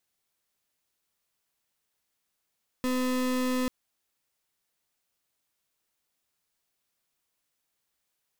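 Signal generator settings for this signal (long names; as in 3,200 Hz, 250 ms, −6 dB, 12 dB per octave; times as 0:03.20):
pulse wave 254 Hz, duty 34% −27.5 dBFS 0.84 s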